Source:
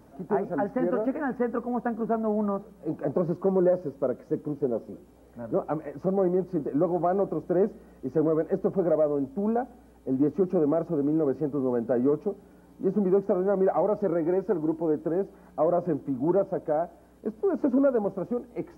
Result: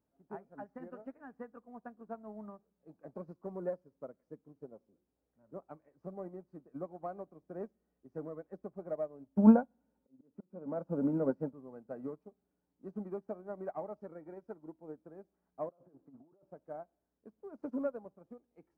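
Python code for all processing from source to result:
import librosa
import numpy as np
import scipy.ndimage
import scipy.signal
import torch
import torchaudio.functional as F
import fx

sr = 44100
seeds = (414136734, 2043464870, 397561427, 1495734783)

y = fx.chain(x, sr, fx.auto_swell(attack_ms=514.0),
    fx.small_body(hz=(220.0, 540.0, 910.0, 1400.0), ring_ms=25, db=11), at=(9.37, 11.54))
y = fx.chain(y, sr, fx.low_shelf(hz=160.0, db=-10.5),
    fx.over_compress(threshold_db=-34.0, ratio=-1.0),
    fx.lowpass(hz=1300.0, slope=12), at=(15.69, 16.43))
y = fx.dynamic_eq(y, sr, hz=390.0, q=1.6, threshold_db=-34.0, ratio=4.0, max_db=-5)
y = fx.upward_expand(y, sr, threshold_db=-35.0, expansion=2.5)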